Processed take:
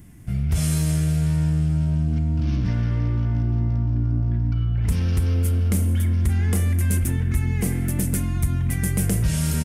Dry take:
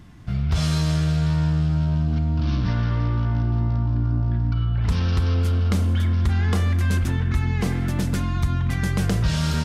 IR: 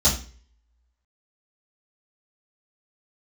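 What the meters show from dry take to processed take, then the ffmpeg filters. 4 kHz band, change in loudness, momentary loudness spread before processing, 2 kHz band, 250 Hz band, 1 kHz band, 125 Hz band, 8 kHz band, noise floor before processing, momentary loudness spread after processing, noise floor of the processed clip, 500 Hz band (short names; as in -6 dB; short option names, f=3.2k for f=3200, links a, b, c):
-6.0 dB, 0.0 dB, 3 LU, -4.0 dB, 0.0 dB, -7.5 dB, 0.0 dB, +8.0 dB, -24 dBFS, 2 LU, -24 dBFS, -2.0 dB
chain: -af "firequalizer=gain_entry='entry(310,0);entry(1100,-10);entry(2100,-1);entry(3900,-9);entry(9300,14)':delay=0.05:min_phase=1"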